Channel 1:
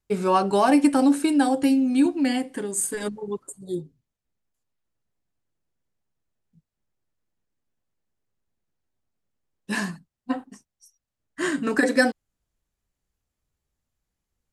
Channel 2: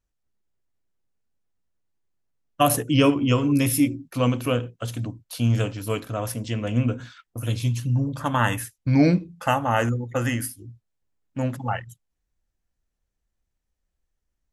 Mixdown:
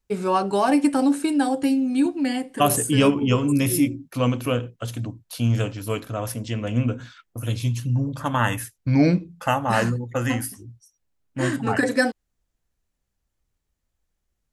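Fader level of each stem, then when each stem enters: -1.0, 0.0 dB; 0.00, 0.00 s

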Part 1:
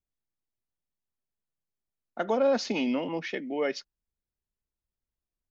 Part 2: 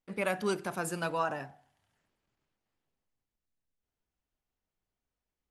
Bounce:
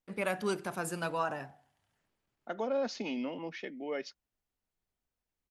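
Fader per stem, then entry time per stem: -8.0, -1.5 dB; 0.30, 0.00 s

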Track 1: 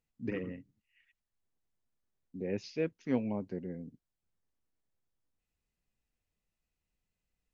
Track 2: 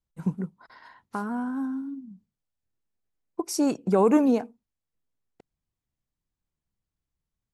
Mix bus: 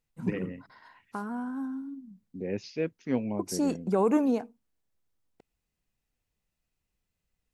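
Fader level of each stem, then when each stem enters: +2.5, -4.5 dB; 0.00, 0.00 s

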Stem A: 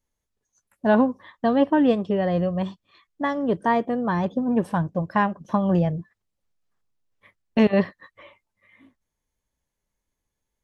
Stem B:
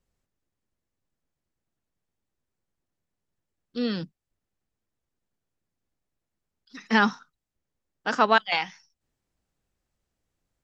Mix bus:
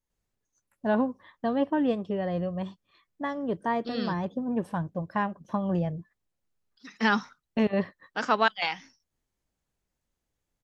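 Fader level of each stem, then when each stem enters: -7.0, -3.5 dB; 0.00, 0.10 s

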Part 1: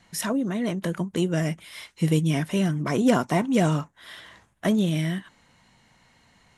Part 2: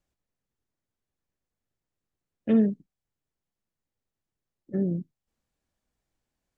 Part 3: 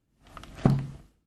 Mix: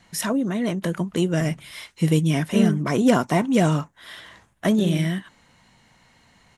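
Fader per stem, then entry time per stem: +2.5, 0.0, -14.0 dB; 0.00, 0.05, 0.75 s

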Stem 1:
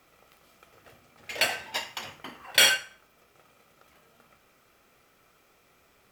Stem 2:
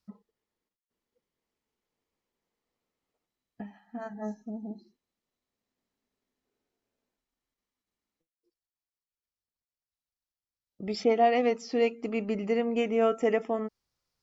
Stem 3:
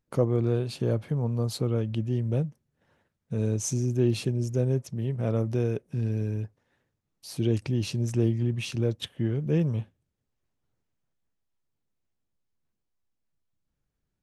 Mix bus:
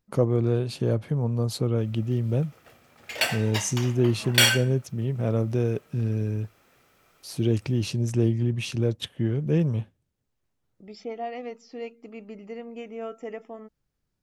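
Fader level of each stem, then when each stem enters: +0.5, -10.5, +2.0 dB; 1.80, 0.00, 0.00 s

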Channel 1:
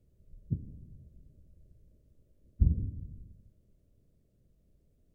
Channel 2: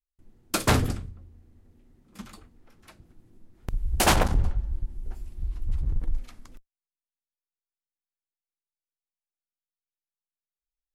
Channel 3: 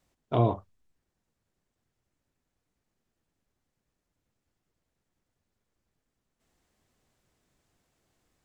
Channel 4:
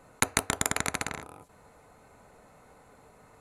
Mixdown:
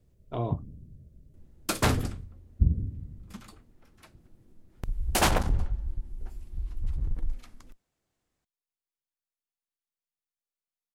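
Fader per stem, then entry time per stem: +2.5 dB, -3.0 dB, -7.5 dB, off; 0.00 s, 1.15 s, 0.00 s, off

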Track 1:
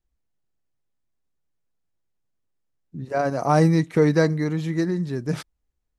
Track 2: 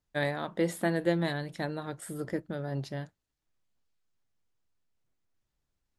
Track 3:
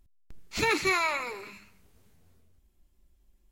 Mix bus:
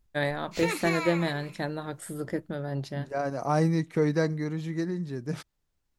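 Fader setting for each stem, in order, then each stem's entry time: -7.0, +2.0, -6.0 dB; 0.00, 0.00, 0.00 s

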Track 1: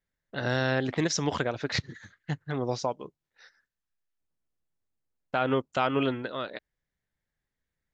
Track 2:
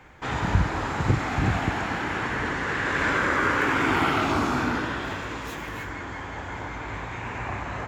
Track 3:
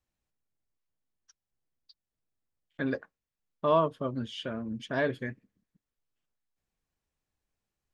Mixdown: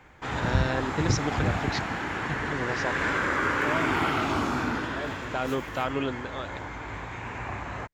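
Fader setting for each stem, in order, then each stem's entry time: -3.0, -3.0, -8.5 dB; 0.00, 0.00, 0.00 s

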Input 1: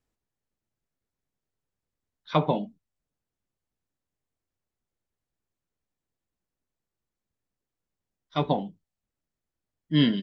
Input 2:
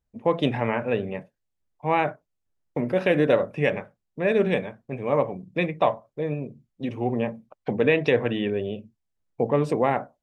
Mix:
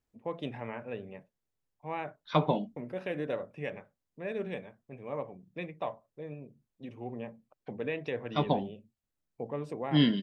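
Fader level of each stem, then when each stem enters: -3.0, -14.5 dB; 0.00, 0.00 s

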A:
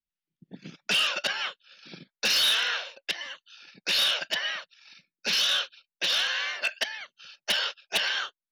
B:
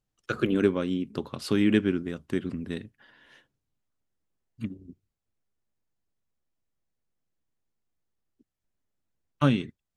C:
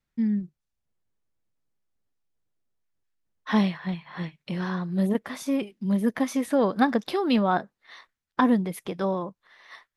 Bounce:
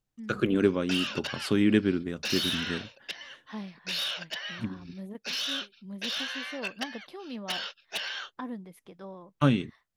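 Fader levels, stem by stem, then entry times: -7.5, -0.5, -17.0 dB; 0.00, 0.00, 0.00 s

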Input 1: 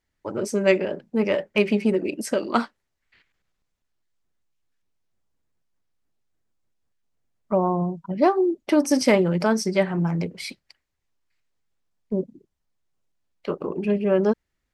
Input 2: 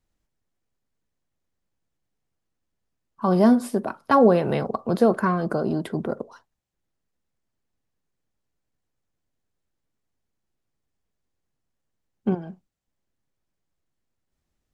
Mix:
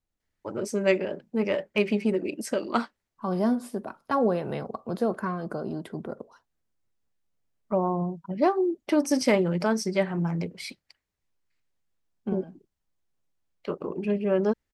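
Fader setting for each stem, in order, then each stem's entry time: -4.0, -8.0 dB; 0.20, 0.00 s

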